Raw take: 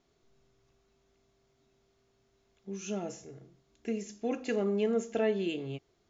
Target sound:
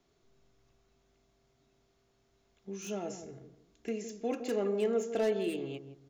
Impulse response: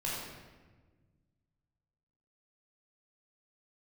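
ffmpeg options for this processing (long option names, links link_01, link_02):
-filter_complex "[0:a]asplit=2[link_01][link_02];[link_02]adelay=162,lowpass=frequency=830:poles=1,volume=-9.5dB,asplit=2[link_03][link_04];[link_04]adelay=162,lowpass=frequency=830:poles=1,volume=0.26,asplit=2[link_05][link_06];[link_06]adelay=162,lowpass=frequency=830:poles=1,volume=0.26[link_07];[link_01][link_03][link_05][link_07]amix=inputs=4:normalize=0,acrossover=split=240|980[link_08][link_09][link_10];[link_08]acompressor=threshold=-47dB:ratio=6[link_11];[link_10]aeval=exprs='0.0112*(abs(mod(val(0)/0.0112+3,4)-2)-1)':channel_layout=same[link_12];[link_11][link_09][link_12]amix=inputs=3:normalize=0"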